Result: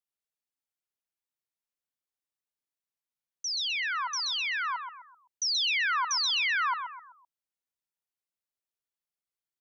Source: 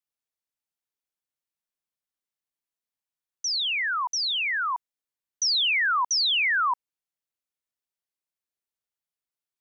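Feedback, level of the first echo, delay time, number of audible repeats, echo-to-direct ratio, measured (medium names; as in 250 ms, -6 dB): 38%, -7.5 dB, 128 ms, 4, -7.0 dB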